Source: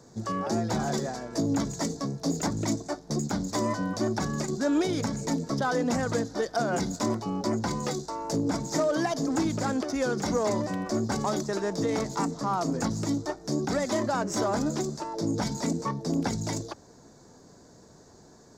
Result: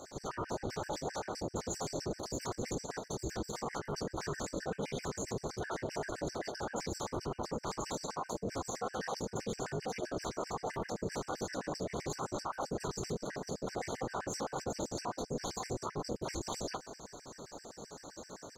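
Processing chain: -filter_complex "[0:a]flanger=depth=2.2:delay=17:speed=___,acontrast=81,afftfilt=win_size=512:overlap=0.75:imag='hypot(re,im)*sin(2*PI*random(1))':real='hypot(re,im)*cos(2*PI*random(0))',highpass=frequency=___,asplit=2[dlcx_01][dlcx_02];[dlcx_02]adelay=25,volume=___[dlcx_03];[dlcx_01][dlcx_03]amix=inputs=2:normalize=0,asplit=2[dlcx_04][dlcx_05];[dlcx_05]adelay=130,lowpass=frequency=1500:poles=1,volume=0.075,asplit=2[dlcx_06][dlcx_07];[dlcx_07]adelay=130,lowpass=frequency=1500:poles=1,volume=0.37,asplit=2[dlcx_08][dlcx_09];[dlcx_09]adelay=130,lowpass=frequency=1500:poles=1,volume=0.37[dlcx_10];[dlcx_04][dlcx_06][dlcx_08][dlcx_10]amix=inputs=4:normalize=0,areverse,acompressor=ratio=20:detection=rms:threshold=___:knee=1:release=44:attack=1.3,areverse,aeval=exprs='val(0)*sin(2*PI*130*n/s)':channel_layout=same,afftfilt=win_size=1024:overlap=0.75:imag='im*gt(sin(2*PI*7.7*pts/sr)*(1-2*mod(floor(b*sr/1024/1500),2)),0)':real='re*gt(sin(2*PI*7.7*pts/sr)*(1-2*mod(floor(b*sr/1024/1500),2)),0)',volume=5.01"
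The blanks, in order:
2.6, 280, 0.299, 0.00794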